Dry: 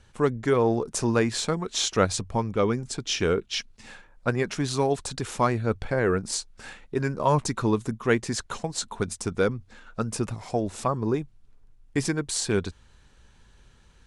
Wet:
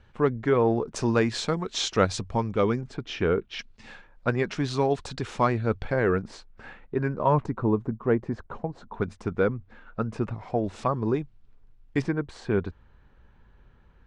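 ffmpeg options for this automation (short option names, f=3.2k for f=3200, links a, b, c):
-af "asetnsamples=n=441:p=0,asendcmd='0.96 lowpass f 5300;2.81 lowpass f 2200;3.59 lowpass f 4300;6.22 lowpass f 2000;7.46 lowpass f 1000;8.94 lowpass f 2100;10.64 lowpass f 3900;12.02 lowpass f 1700',lowpass=2.8k"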